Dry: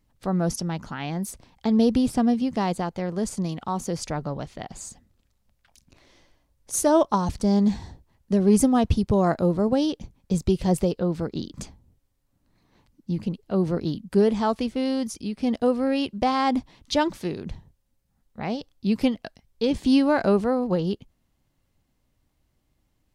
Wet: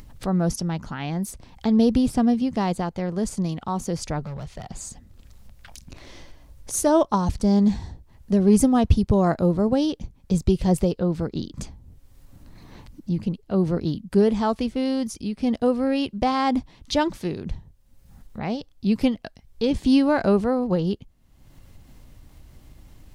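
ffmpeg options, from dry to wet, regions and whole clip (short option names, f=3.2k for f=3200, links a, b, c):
-filter_complex "[0:a]asettb=1/sr,asplit=3[a][b][c];[a]atrim=end=4.254[d];[b]atrim=start=4.25:end=4.67,asetpts=PTS-STARTPTS,afade=t=in:d=0.004:c=qsin,afade=t=out:st=0.416:d=0.004:c=qsin,equalizer=f=280:w=2.2:g=-12,acrossover=split=250|3000[e][f][g];[f]acompressor=threshold=-34dB:ratio=6:attack=3.2:release=140:knee=2.83:detection=peak[h];[e][h][g]amix=inputs=3:normalize=0,asoftclip=type=hard:threshold=-32.5dB[i];[c]atrim=start=4.666[j];[d][i]acrossfade=d=0.004:c1=hsin:c2=qsin[k];[k][j]acrossfade=d=0.004:c1=qsin:c2=hsin,lowshelf=f=120:g=7.5,acompressor=mode=upward:threshold=-30dB:ratio=2.5"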